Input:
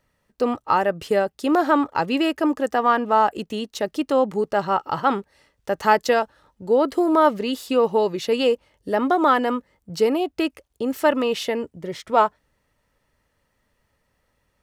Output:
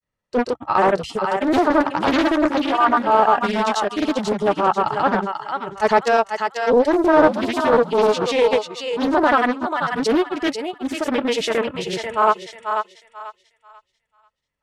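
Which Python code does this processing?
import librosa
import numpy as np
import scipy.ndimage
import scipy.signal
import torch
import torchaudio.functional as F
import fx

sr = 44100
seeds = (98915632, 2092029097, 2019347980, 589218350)

p1 = fx.noise_reduce_blind(x, sr, reduce_db=19)
p2 = fx.granulator(p1, sr, seeds[0], grain_ms=100.0, per_s=20.0, spray_ms=100.0, spread_st=0)
p3 = fx.transient(p2, sr, attack_db=-7, sustain_db=-1)
p4 = fx.rider(p3, sr, range_db=4, speed_s=0.5)
p5 = p3 + F.gain(torch.from_numpy(p4), -3.0).numpy()
p6 = scipy.signal.sosfilt(scipy.signal.butter(4, 10000.0, 'lowpass', fs=sr, output='sos'), p5)
p7 = p6 + fx.echo_thinned(p6, sr, ms=490, feedback_pct=29, hz=640.0, wet_db=-4.5, dry=0)
p8 = fx.doppler_dist(p7, sr, depth_ms=0.58)
y = F.gain(torch.from_numpy(p8), 1.0).numpy()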